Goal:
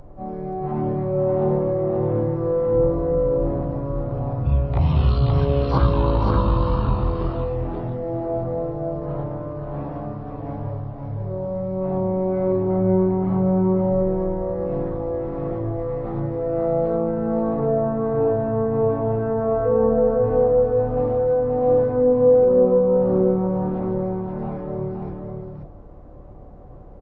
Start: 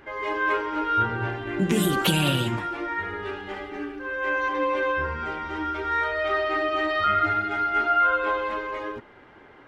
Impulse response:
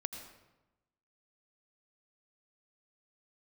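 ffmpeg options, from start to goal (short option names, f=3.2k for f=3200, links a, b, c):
-filter_complex "[0:a]aeval=exprs='val(0)+0.00631*(sin(2*PI*50*n/s)+sin(2*PI*2*50*n/s)/2+sin(2*PI*3*50*n/s)/3+sin(2*PI*4*50*n/s)/4+sin(2*PI*5*50*n/s)/5)':c=same,acrossover=split=2800[a][b];[b]acompressor=threshold=-43dB:ratio=4:attack=1:release=60[c];[a][c]amix=inputs=2:normalize=0,asetrate=15788,aresample=44100,aecho=1:1:528:0.631,volume=3.5dB"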